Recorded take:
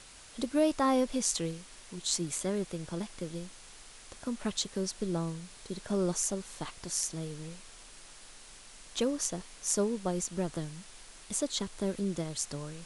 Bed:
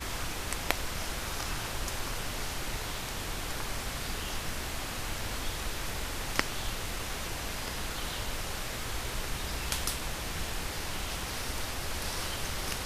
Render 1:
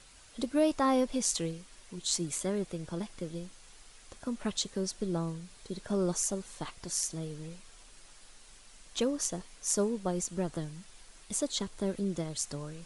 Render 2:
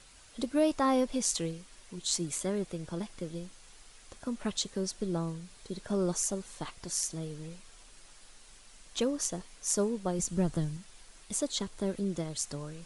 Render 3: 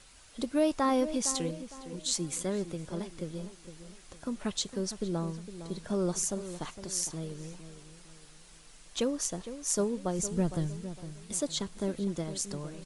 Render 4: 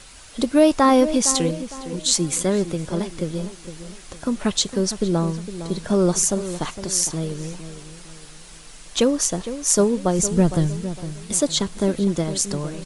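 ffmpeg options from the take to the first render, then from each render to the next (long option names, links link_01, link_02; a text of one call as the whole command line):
ffmpeg -i in.wav -af "afftdn=noise_reduction=6:noise_floor=-53" out.wav
ffmpeg -i in.wav -filter_complex "[0:a]asettb=1/sr,asplit=3[link_01][link_02][link_03];[link_01]atrim=end=10.194[link_04];[link_02]atrim=start=10.19:end=10.77,asetpts=PTS-STARTPTS,afade=type=in:duration=0.004:curve=qsin,afade=type=out:start_time=0.576:duration=0.004:curve=qsin,bass=frequency=250:gain=8,treble=frequency=4000:gain=2[link_05];[link_03]atrim=start=10.766[link_06];[link_04][link_05]acrossfade=duration=0.004:curve1=hsin:curve2=qsin[link_07];[link_07][link_06]acrossfade=duration=0.004:curve1=qsin:curve2=hsin" out.wav
ffmpeg -i in.wav -filter_complex "[0:a]asplit=2[link_01][link_02];[link_02]adelay=459,lowpass=frequency=1700:poles=1,volume=-11.5dB,asplit=2[link_03][link_04];[link_04]adelay=459,lowpass=frequency=1700:poles=1,volume=0.38,asplit=2[link_05][link_06];[link_06]adelay=459,lowpass=frequency=1700:poles=1,volume=0.38,asplit=2[link_07][link_08];[link_08]adelay=459,lowpass=frequency=1700:poles=1,volume=0.38[link_09];[link_01][link_03][link_05][link_07][link_09]amix=inputs=5:normalize=0" out.wav
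ffmpeg -i in.wav -af "volume=12dB,alimiter=limit=-2dB:level=0:latency=1" out.wav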